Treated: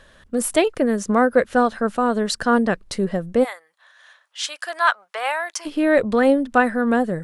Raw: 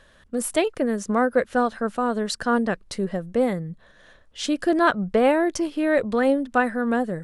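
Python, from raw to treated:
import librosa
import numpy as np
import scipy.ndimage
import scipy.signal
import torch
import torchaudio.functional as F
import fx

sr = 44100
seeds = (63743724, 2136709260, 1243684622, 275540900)

y = fx.highpass(x, sr, hz=850.0, slope=24, at=(3.43, 5.65), fade=0.02)
y = y * librosa.db_to_amplitude(4.0)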